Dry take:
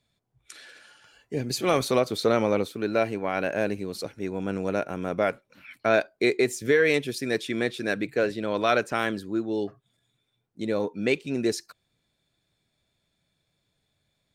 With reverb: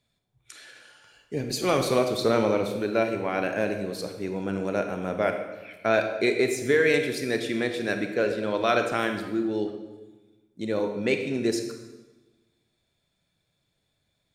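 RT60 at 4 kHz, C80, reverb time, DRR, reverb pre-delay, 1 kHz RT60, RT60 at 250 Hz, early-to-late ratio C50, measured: 1.0 s, 8.5 dB, 1.2 s, 5.5 dB, 25 ms, 1.1 s, 1.4 s, 7.0 dB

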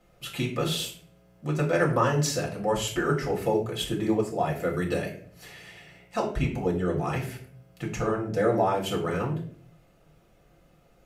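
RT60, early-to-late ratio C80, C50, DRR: 0.50 s, 12.5 dB, 8.5 dB, -3.0 dB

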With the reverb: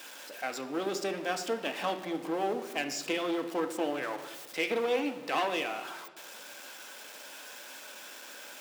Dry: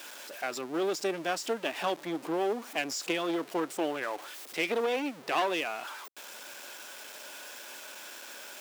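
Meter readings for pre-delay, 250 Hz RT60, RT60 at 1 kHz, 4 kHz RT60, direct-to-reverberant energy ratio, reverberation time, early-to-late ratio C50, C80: 4 ms, 1.7 s, 1.0 s, 0.80 s, 5.5 dB, 1.2 s, 10.0 dB, 12.5 dB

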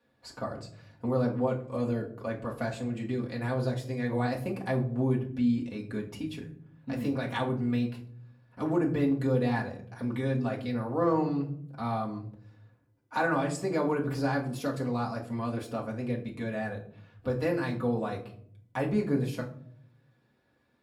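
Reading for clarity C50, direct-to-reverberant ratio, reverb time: 11.5 dB, -3.5 dB, not exponential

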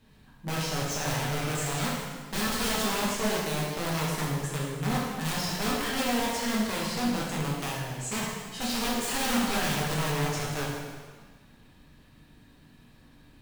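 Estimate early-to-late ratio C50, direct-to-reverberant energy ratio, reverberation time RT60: 0.0 dB, -5.5 dB, 1.6 s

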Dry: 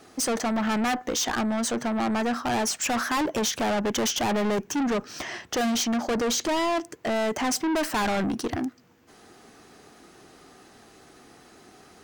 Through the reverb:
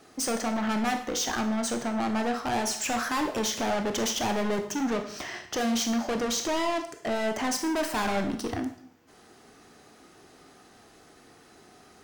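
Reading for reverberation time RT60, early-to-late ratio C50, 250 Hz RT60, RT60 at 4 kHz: 0.60 s, 9.0 dB, 0.60 s, 0.60 s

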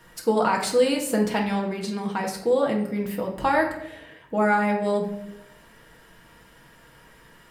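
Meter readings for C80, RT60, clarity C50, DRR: 10.5 dB, 0.85 s, 7.5 dB, -1.0 dB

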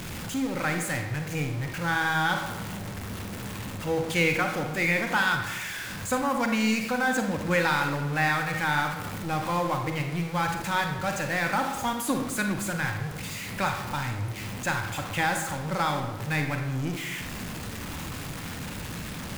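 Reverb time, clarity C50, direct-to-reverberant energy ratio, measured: 1.2 s, 5.5 dB, 4.0 dB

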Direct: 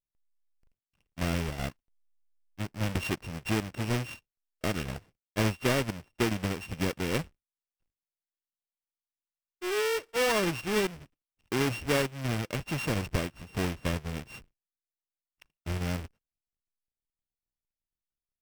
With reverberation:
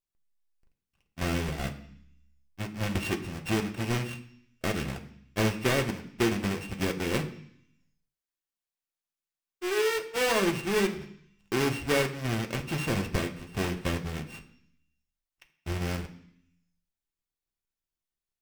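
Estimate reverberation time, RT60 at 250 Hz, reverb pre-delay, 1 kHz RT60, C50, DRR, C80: 0.65 s, 0.85 s, 3 ms, 0.65 s, 12.0 dB, 3.5 dB, 15.0 dB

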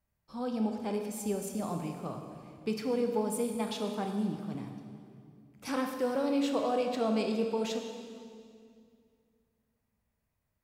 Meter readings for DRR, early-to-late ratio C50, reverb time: 3.5 dB, 5.0 dB, 2.3 s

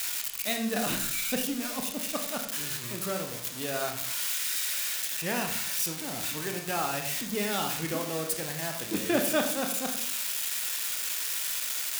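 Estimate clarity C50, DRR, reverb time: 7.5 dB, 3.5 dB, 0.65 s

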